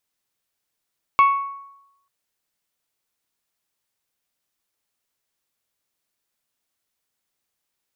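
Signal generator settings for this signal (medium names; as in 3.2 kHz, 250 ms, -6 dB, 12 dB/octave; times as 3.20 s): glass hit bell, lowest mode 1.11 kHz, decay 0.87 s, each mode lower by 10.5 dB, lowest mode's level -9 dB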